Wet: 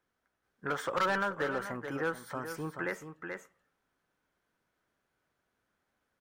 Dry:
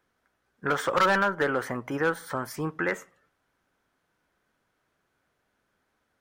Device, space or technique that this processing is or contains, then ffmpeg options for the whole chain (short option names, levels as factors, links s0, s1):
ducked delay: -filter_complex "[0:a]asplit=3[s0][s1][s2];[s1]adelay=431,volume=0.708[s3];[s2]apad=whole_len=292800[s4];[s3][s4]sidechaincompress=threshold=0.0316:ratio=8:attack=29:release=955[s5];[s0][s5]amix=inputs=2:normalize=0,volume=0.422"